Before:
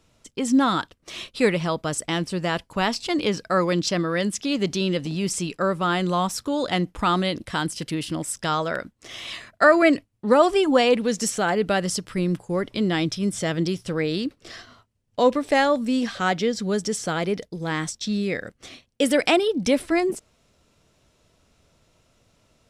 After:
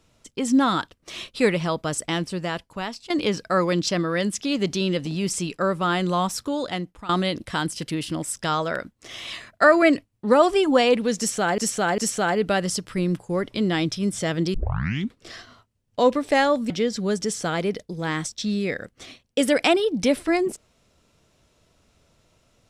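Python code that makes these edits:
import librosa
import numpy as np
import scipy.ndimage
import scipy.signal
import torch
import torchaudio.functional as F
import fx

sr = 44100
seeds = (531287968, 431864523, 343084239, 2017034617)

y = fx.edit(x, sr, fx.fade_out_to(start_s=2.11, length_s=0.99, floor_db=-13.5),
    fx.fade_out_to(start_s=6.42, length_s=0.67, floor_db=-18.5),
    fx.repeat(start_s=11.18, length_s=0.4, count=3),
    fx.tape_start(start_s=13.74, length_s=0.65),
    fx.cut(start_s=15.9, length_s=0.43), tone=tone)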